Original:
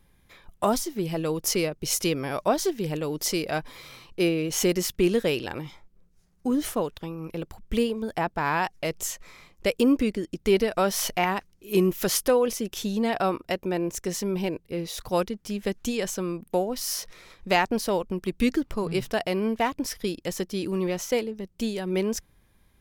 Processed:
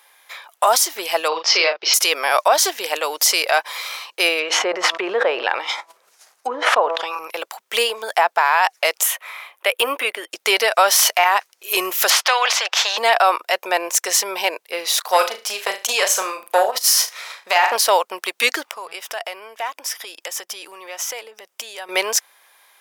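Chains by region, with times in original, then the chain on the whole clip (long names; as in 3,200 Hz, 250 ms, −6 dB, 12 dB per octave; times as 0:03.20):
0:01.28–0:01.94: elliptic low-pass filter 5,100 Hz, stop band 70 dB + double-tracking delay 37 ms −6 dB
0:04.39–0:07.19: hum removal 164.8 Hz, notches 8 + treble cut that deepens with the level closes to 1,200 Hz, closed at −22.5 dBFS + level that may fall only so fast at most 38 dB per second
0:09.03–0:10.31: high-pass filter 270 Hz + flat-topped bell 5,800 Hz −12.5 dB 1.1 octaves + notch filter 500 Hz
0:12.10–0:12.98: high-pass filter 550 Hz 24 dB per octave + high-frequency loss of the air 210 metres + every bin compressed towards the loudest bin 2 to 1
0:15.01–0:17.76: flutter between parallel walls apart 6.3 metres, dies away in 0.28 s + saturating transformer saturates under 730 Hz
0:18.67–0:21.89: notch filter 4,200 Hz, Q 7.7 + downward compressor 4 to 1, threshold −39 dBFS
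whole clip: high-pass filter 680 Hz 24 dB per octave; boost into a limiter +20.5 dB; level −3.5 dB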